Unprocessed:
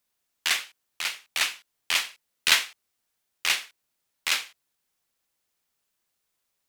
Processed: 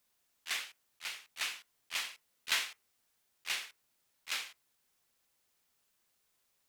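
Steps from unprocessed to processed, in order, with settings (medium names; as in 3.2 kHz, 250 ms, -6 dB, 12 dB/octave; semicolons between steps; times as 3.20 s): slow attack 311 ms; on a send: reverberation RT60 0.35 s, pre-delay 3 ms, DRR 16 dB; on the sum: trim +1.5 dB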